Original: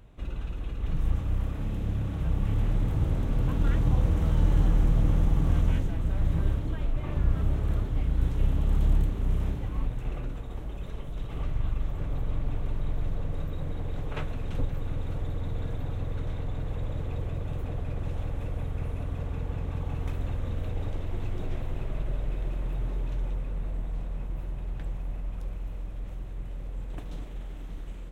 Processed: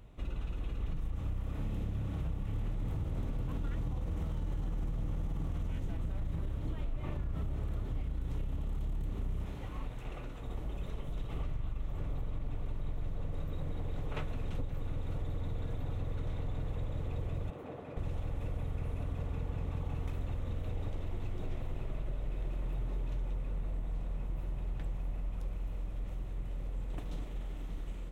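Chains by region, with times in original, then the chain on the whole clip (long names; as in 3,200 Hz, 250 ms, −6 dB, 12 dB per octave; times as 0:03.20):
0:09.45–0:10.42: low-shelf EQ 390 Hz −8.5 dB + highs frequency-modulated by the lows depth 0.17 ms
0:17.50–0:17.97: high-pass filter 260 Hz + high-shelf EQ 2,900 Hz −11.5 dB
whole clip: brickwall limiter −20.5 dBFS; notch filter 1,600 Hz, Q 16; downward compressor, threshold −30 dBFS; level −1.5 dB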